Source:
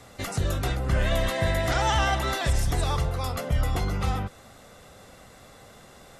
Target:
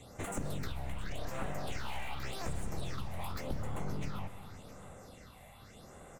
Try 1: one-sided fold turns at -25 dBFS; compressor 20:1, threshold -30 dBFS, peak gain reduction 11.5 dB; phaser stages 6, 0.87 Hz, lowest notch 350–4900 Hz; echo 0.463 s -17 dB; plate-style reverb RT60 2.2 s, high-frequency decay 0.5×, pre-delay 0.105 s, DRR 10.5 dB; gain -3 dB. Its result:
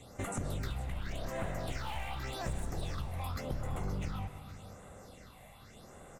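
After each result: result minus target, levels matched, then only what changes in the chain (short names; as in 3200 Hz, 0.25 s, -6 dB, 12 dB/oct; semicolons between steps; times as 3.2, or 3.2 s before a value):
one-sided fold: distortion -11 dB; echo 0.2 s early
change: one-sided fold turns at -33 dBFS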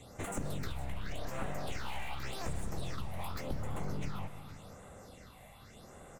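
echo 0.2 s early
change: echo 0.663 s -17 dB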